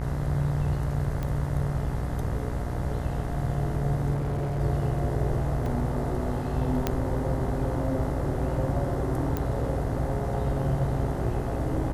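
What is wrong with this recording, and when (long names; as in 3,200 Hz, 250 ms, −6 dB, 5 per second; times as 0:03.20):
mains buzz 60 Hz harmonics 35 −32 dBFS
0:01.23: click −19 dBFS
0:04.14–0:04.61: clipping −25 dBFS
0:05.66: drop-out 2.5 ms
0:06.87: click −10 dBFS
0:09.37: click −15 dBFS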